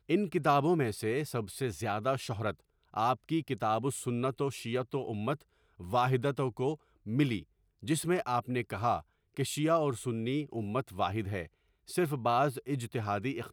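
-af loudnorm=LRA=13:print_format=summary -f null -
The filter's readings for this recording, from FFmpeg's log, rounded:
Input Integrated:    -32.7 LUFS
Input True Peak:     -14.5 dBTP
Input LRA:             1.3 LU
Input Threshold:     -43.0 LUFS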